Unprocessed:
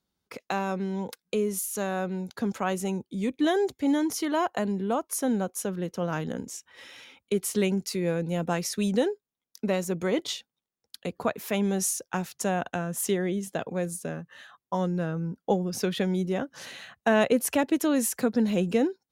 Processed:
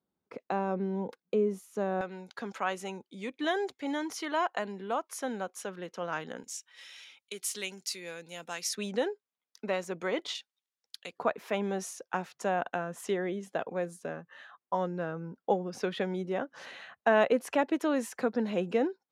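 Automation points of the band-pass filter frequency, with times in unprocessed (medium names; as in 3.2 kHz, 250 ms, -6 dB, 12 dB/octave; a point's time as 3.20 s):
band-pass filter, Q 0.55
420 Hz
from 2.01 s 1.7 kHz
from 6.44 s 4.9 kHz
from 8.75 s 1.4 kHz
from 10.35 s 3.6 kHz
from 11.18 s 960 Hz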